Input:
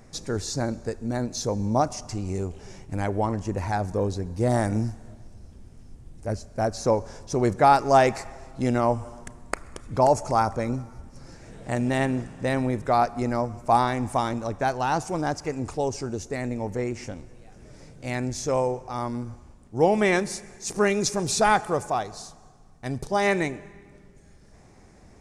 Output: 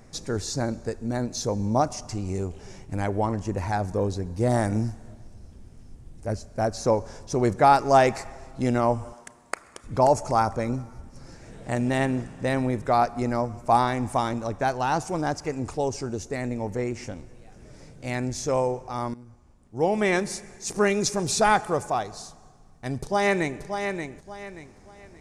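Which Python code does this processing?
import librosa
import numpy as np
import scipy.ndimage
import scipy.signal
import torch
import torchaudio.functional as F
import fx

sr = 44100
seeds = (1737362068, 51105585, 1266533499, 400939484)

y = fx.highpass(x, sr, hz=590.0, slope=6, at=(9.13, 9.84))
y = fx.echo_throw(y, sr, start_s=23.0, length_s=0.62, ms=580, feedback_pct=30, wet_db=-6.5)
y = fx.edit(y, sr, fx.fade_in_from(start_s=19.14, length_s=1.16, floor_db=-16.5), tone=tone)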